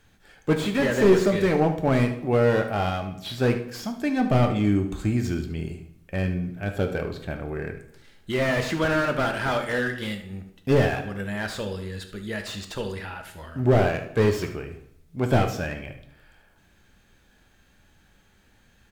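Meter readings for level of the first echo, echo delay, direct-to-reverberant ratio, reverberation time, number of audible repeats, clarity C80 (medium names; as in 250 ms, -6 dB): -13.0 dB, 74 ms, 5.5 dB, 0.75 s, 1, 13.0 dB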